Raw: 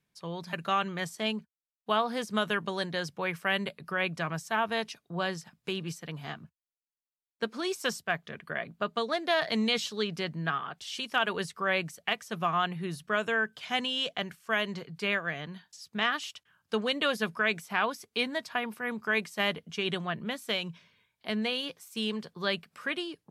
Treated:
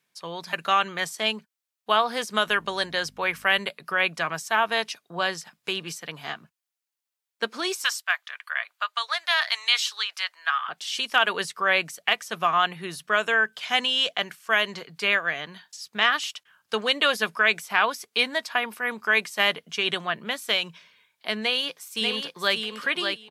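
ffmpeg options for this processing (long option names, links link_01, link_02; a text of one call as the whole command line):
ffmpeg -i in.wav -filter_complex "[0:a]asettb=1/sr,asplit=3[link_01][link_02][link_03];[link_01]atrim=end=2.484[link_04];[link_02]atrim=start=2.48:end=3.6,asetpts=PTS-STARTPTS,afade=type=in:duration=0.004:curve=qsin,afade=type=out:start_time=1.116:duration=0.004:curve=qsin,aeval=exprs='val(0)+0.00501*(sin(2*PI*50*n/s)+sin(2*PI*2*50*n/s)/2+sin(2*PI*3*50*n/s)/3+sin(2*PI*4*50*n/s)/4+sin(2*PI*5*50*n/s)/5)':channel_layout=same[link_05];[link_03]atrim=start=3.596[link_06];[link_04][link_05]acrossfade=duration=0.004:curve1=hsin:curve2=qsin[link_07];[link_07][link_06]acrossfade=duration=0.004:curve1=qsin:curve2=hsin,asettb=1/sr,asplit=3[link_08][link_09][link_10];[link_08]atrim=end=7.844[link_11];[link_09]atrim=start=7.84:end=10.69,asetpts=PTS-STARTPTS,afade=type=in:duration=0.004:curve=qsin,afade=type=out:start_time=2.846:duration=0.004:curve=qsin,highpass=frequency=960:width=0.5412,highpass=frequency=960:width=1.3066[link_12];[link_10]atrim=start=10.686[link_13];[link_11][link_12]acrossfade=duration=0.004:curve1=hsin:curve2=qsin[link_14];[link_14][link_13]acrossfade=duration=0.004:curve1=qsin:curve2=hsin,asplit=2[link_15][link_16];[link_16]afade=type=in:start_time=21.42:duration=0.01,afade=type=out:start_time=22.57:duration=0.01,aecho=0:1:590|1180|1770:0.562341|0.0843512|0.0126527[link_17];[link_15][link_17]amix=inputs=2:normalize=0,highpass=frequency=760:poles=1,volume=8.5dB" out.wav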